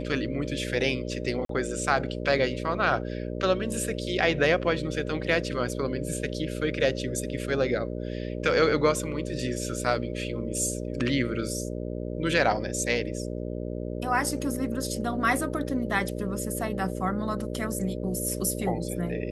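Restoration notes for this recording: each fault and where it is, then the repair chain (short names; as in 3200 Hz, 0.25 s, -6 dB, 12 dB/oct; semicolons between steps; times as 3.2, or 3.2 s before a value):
buzz 60 Hz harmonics 10 -33 dBFS
1.45–1.49 gap 43 ms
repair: de-hum 60 Hz, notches 10; interpolate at 1.45, 43 ms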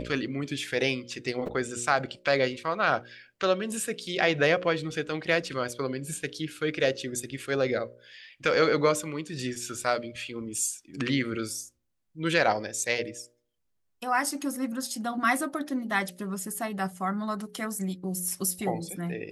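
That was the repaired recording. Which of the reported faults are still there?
none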